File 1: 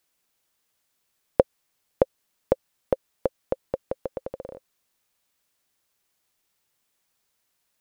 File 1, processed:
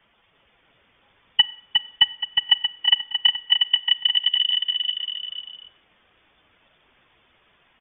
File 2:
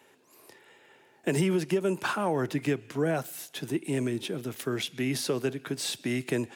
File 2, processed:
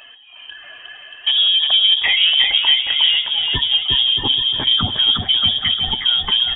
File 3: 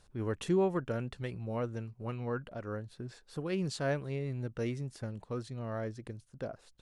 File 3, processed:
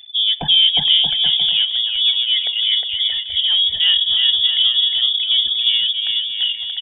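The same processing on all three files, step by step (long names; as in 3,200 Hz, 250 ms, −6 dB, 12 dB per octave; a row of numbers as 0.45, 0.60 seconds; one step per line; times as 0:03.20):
expanding power law on the bin magnitudes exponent 1.8
dynamic equaliser 1,100 Hz, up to −4 dB, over −52 dBFS, Q 3
in parallel at +2.5 dB: downward compressor, threshold −37 dBFS
on the sum: soft clipping −20.5 dBFS
on a send: bouncing-ball delay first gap 360 ms, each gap 0.75×, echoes 5
on the sum: four-comb reverb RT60 0.65 s, combs from 31 ms, DRR 18.5 dB
voice inversion scrambler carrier 3,500 Hz
normalise the peak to −3 dBFS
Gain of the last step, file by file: +12.0, +10.5, +13.0 decibels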